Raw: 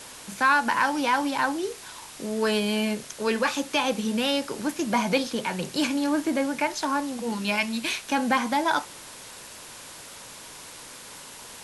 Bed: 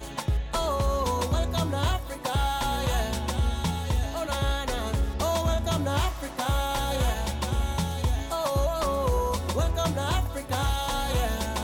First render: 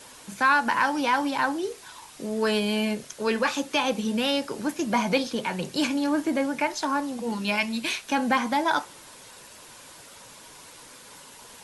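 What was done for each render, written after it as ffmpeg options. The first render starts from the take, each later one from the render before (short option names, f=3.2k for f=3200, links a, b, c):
-af "afftdn=nr=6:nf=-44"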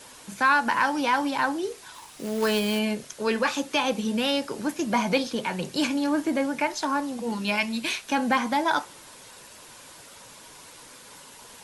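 -filter_complex "[0:a]asettb=1/sr,asplit=3[a][b][c];[a]atrim=end=1.944[d];[b]atrim=start=1.94:end=2.79,asetpts=PTS-STARTPTS,afade=t=in:d=0.004:c=qsin,afade=t=out:st=0.846:d=0.004:c=qsin,acrusher=bits=3:mode=log:mix=0:aa=0.000001[e];[c]atrim=start=2.786[f];[d][e]acrossfade=d=0.004:c1=hsin:c2=qsin[g];[g][f]acrossfade=d=0.004:c1=qsin:c2=hsin"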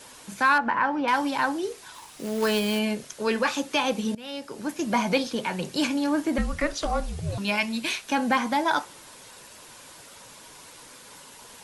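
-filter_complex "[0:a]asettb=1/sr,asplit=3[a][b][c];[a]atrim=end=0.584[d];[b]atrim=start=0.58:end=1.08,asetpts=PTS-STARTPTS,afade=t=in:d=0.004:c=qsin,afade=t=out:st=0.496:d=0.004:c=qsin,lowpass=1.9k[e];[c]atrim=start=1.076[f];[d][e]acrossfade=d=0.004:c1=hsin:c2=qsin[g];[g][f]acrossfade=d=0.004:c1=qsin:c2=hsin,asettb=1/sr,asplit=3[h][i][j];[h]atrim=end=6.384[k];[i]atrim=start=6.38:end=7.38,asetpts=PTS-STARTPTS,afade=t=in:d=0.004:c=qsin,afade=t=out:st=0.996:d=0.004:c=qsin,afreqshift=-320[l];[j]atrim=start=7.376[m];[k][l]acrossfade=d=0.004:c1=hsin:c2=qsin[n];[n][m]acrossfade=d=0.004:c1=qsin:c2=hsin,asplit=2[o][p];[o]atrim=end=4.15,asetpts=PTS-STARTPTS,afade=t=out:st=4.146:d=0.004:c=hsin:silence=0.0794328[q];[p]atrim=start=4.15,asetpts=PTS-STARTPTS,afade=t=in:d=0.73:silence=0.0794328[r];[q][r]concat=n=2:v=0:a=1"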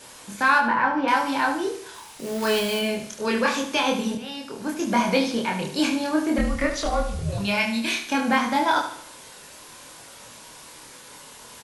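-filter_complex "[0:a]asplit=2[a][b];[b]adelay=26,volume=-2dB[c];[a][c]amix=inputs=2:normalize=0,aecho=1:1:74|148|222|296|370:0.335|0.141|0.0591|0.0248|0.0104"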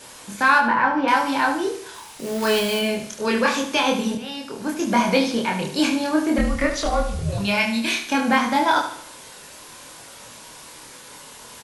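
-af "volume=2.5dB"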